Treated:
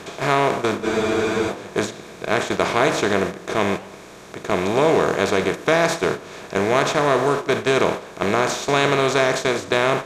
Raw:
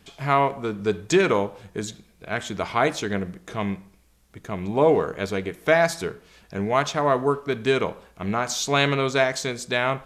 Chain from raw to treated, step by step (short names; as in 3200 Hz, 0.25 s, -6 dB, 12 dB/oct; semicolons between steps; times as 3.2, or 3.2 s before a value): per-bin compression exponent 0.4; gate -19 dBFS, range -12 dB; in parallel at +3 dB: compressor, threshold -28 dBFS, peak gain reduction 17.5 dB; on the sum: flange 1.5 Hz, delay 6.9 ms, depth 9.5 ms, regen -89%; spectral freeze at 0.85, 0.65 s